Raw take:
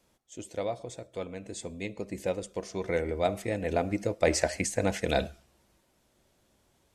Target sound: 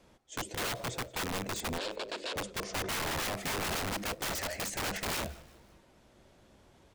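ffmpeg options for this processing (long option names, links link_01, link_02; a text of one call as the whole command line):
ffmpeg -i in.wav -filter_complex "[0:a]aemphasis=mode=reproduction:type=50kf,acompressor=threshold=-34dB:ratio=4,aeval=exprs='(mod(75*val(0)+1,2)-1)/75':channel_layout=same,asettb=1/sr,asplit=3[link_01][link_02][link_03];[link_01]atrim=end=1.784[link_04];[link_02]atrim=start=1.78:end=2.36,asetpts=PTS-STARTPTS,afade=type=in:duration=0.004:curve=qsin,afade=type=out:start_time=0.576:duration=0.004:curve=qsin,highpass=frequency=330:width=0.5412,highpass=frequency=330:width=1.3066,equalizer=frequency=560:width_type=q:width=4:gain=5,equalizer=frequency=800:width_type=q:width=4:gain=-6,equalizer=frequency=1200:width_type=q:width=4:gain=-5,equalizer=frequency=2000:width_type=q:width=4:gain=-8,equalizer=frequency=4100:width_type=q:width=4:gain=4,equalizer=frequency=6100:width_type=q:width=4:gain=-10,lowpass=frequency=6700:width=0.5412,lowpass=frequency=6700:width=1.3066[link_05];[link_03]atrim=start=2.356[link_06];[link_04][link_05]acrossfade=duration=0.004:curve1=hsin:curve2=qsin[link_07];[link_07][link_06]acrossfade=duration=0.004:curve1=qsin:curve2=hsin,asplit=4[link_08][link_09][link_10][link_11];[link_09]adelay=176,afreqshift=-54,volume=-21dB[link_12];[link_10]adelay=352,afreqshift=-108,volume=-28.7dB[link_13];[link_11]adelay=528,afreqshift=-162,volume=-36.5dB[link_14];[link_08][link_12][link_13][link_14]amix=inputs=4:normalize=0,volume=8.5dB" out.wav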